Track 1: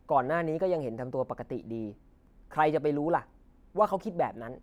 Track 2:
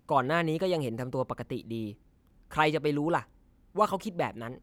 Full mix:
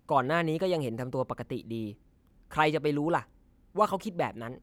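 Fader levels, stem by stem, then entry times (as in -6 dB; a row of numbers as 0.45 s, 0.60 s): -17.5 dB, -1.0 dB; 0.00 s, 0.00 s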